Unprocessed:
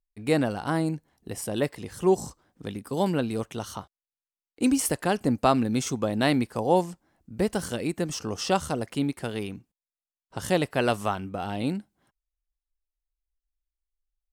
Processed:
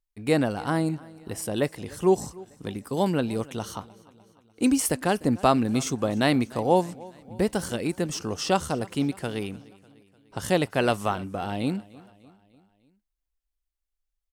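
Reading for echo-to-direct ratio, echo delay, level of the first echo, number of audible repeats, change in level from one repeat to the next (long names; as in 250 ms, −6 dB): −20.5 dB, 299 ms, −22.0 dB, 3, −5.0 dB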